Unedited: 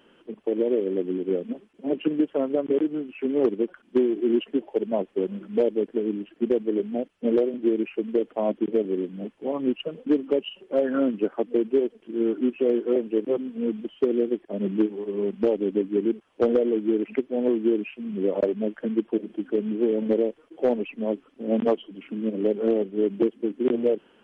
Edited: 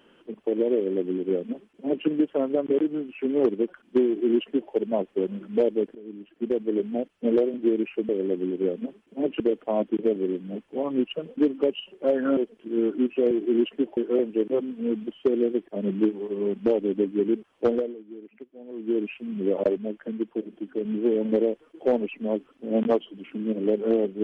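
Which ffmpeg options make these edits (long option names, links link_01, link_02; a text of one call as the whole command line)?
ffmpeg -i in.wav -filter_complex "[0:a]asplit=11[link_01][link_02][link_03][link_04][link_05][link_06][link_07][link_08][link_09][link_10][link_11];[link_01]atrim=end=5.95,asetpts=PTS-STARTPTS,afade=type=out:start_time=5.946:duration=0.004:curve=hsin:silence=0.0794328[link_12];[link_02]atrim=start=5.95:end=8.092,asetpts=PTS-STARTPTS,afade=type=in:duration=0.82:silence=0.0794328[link_13];[link_03]atrim=start=0.758:end=2.072[link_14];[link_04]atrim=start=8.088:end=11.062[link_15];[link_05]atrim=start=11.798:end=12.742[link_16];[link_06]atrim=start=4.058:end=4.722[link_17];[link_07]atrim=start=12.738:end=16.73,asetpts=PTS-STARTPTS,afade=type=out:start_time=3.672:duration=0.32:silence=0.11885[link_18];[link_08]atrim=start=16.73:end=17.49,asetpts=PTS-STARTPTS,volume=-18.5dB[link_19];[link_09]atrim=start=17.49:end=18.552,asetpts=PTS-STARTPTS,afade=type=in:duration=0.32:silence=0.11885[link_20];[link_10]atrim=start=18.548:end=19.622,asetpts=PTS-STARTPTS,volume=-4.5dB[link_21];[link_11]atrim=start=19.618[link_22];[link_12][link_13]concat=n=2:v=0:a=1[link_23];[link_23][link_14]acrossfade=duration=0.004:curve1=hsin:curve2=hsin[link_24];[link_24][link_15]acrossfade=duration=0.004:curve1=hsin:curve2=hsin[link_25];[link_25][link_16]acrossfade=duration=0.004:curve1=hsin:curve2=hsin[link_26];[link_26][link_17]acrossfade=duration=0.004:curve1=hsin:curve2=hsin[link_27];[link_18][link_19][link_20]concat=n=3:v=0:a=1[link_28];[link_27][link_28]acrossfade=duration=0.004:curve1=hsin:curve2=hsin[link_29];[link_29][link_21]acrossfade=duration=0.004:curve1=hsin:curve2=hsin[link_30];[link_30][link_22]acrossfade=duration=0.004:curve1=hsin:curve2=hsin" out.wav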